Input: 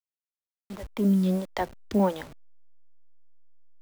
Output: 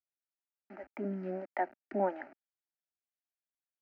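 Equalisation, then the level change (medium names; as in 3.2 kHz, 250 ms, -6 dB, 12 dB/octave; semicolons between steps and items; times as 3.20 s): band-pass 370–2400 Hz; distance through air 180 m; static phaser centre 710 Hz, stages 8; 0.0 dB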